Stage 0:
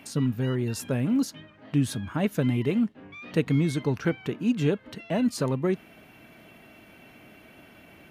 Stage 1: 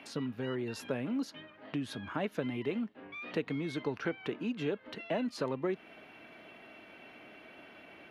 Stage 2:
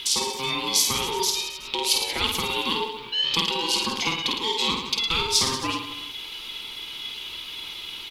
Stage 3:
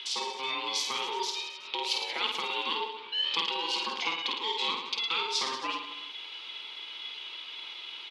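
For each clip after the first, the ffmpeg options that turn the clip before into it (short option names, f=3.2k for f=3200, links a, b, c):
-filter_complex "[0:a]equalizer=f=11k:t=o:w=0.34:g=12,acompressor=threshold=-28dB:ratio=3,acrossover=split=270 4900:gain=0.224 1 0.0631[a][b][c];[a][b][c]amix=inputs=3:normalize=0"
-af "aecho=1:1:50|110|182|268.4|372.1:0.631|0.398|0.251|0.158|0.1,aeval=exprs='val(0)*sin(2*PI*660*n/s)':c=same,aexciter=amount=9.2:drive=7.1:freq=2.6k,volume=6dB"
-af "highpass=470,lowpass=3.8k,volume=-4dB"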